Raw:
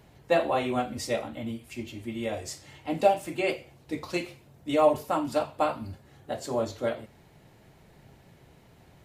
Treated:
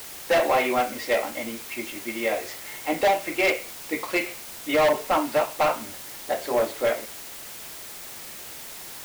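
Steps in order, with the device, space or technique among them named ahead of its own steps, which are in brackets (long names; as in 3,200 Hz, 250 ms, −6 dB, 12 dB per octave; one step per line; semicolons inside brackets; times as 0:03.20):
drive-through speaker (band-pass filter 390–2,900 Hz; parametric band 2,100 Hz +7.5 dB 0.42 octaves; hard clipping −24.5 dBFS, distortion −7 dB; white noise bed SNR 13 dB)
level +8 dB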